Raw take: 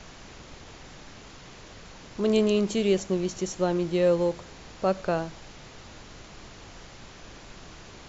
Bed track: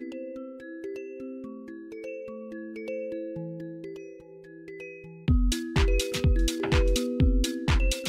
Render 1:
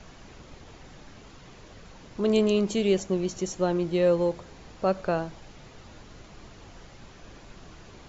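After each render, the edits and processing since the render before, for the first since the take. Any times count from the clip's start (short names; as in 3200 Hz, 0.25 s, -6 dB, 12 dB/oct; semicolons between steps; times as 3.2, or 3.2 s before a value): denoiser 6 dB, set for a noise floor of -47 dBFS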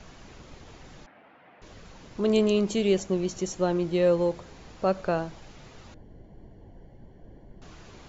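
1.06–1.62 speaker cabinet 350–2300 Hz, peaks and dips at 400 Hz -10 dB, 720 Hz +4 dB, 1100 Hz -5 dB; 5.94–7.62 running mean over 35 samples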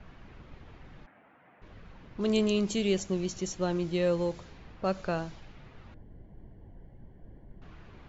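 low-pass opened by the level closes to 1800 Hz, open at -22.5 dBFS; bell 560 Hz -6 dB 2.6 oct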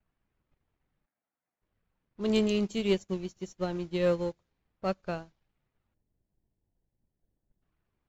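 sample leveller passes 1; upward expander 2.5:1, over -43 dBFS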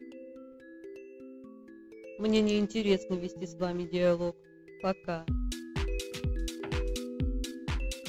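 add bed track -9.5 dB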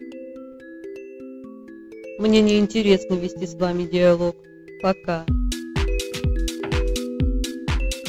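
gain +10.5 dB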